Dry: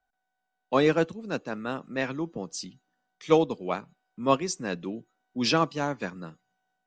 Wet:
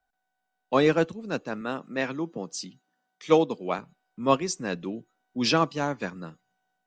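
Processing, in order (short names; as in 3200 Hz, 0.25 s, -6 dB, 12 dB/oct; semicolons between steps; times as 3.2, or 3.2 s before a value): 1.61–3.79 HPF 140 Hz; gain +1 dB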